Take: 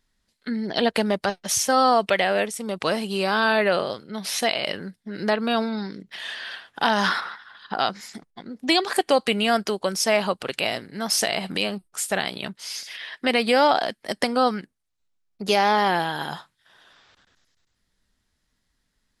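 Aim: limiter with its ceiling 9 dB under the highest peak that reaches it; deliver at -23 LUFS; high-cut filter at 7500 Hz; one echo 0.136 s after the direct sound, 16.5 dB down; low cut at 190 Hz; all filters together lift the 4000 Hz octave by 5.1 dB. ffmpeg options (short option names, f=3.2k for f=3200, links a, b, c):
-af "highpass=190,lowpass=7.5k,equalizer=f=4k:t=o:g=7,alimiter=limit=-12dB:level=0:latency=1,aecho=1:1:136:0.15,volume=2dB"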